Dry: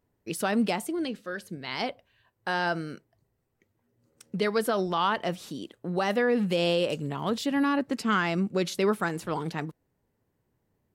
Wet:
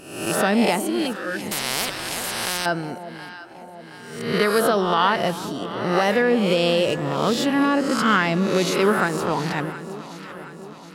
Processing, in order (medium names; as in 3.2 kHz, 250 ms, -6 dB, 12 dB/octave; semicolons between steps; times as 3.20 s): reverse spectral sustain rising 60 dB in 0.79 s; echo whose repeats swap between lows and highs 360 ms, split 900 Hz, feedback 75%, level -12 dB; 1.51–2.66 s: spectrum-flattening compressor 4:1; trim +5 dB